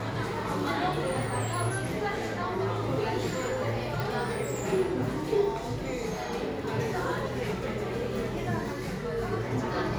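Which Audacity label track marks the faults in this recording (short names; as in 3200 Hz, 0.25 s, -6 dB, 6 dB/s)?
4.000000	4.000000	pop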